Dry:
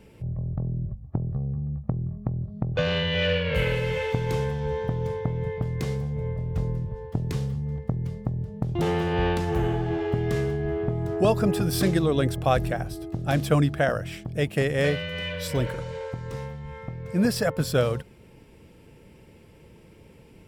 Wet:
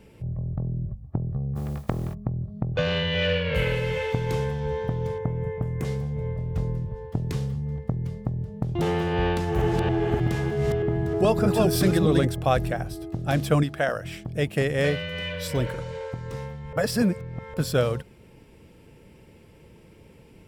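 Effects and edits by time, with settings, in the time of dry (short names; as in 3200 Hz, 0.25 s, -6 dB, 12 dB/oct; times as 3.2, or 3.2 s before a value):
1.55–2.13 spectral contrast lowered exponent 0.54
5.18–5.85 bell 4300 Hz -15 dB 0.96 oct
9.27–12.25 reverse delay 0.311 s, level -2 dB
13.63–14.04 low shelf 270 Hz -9 dB
16.73–17.54 reverse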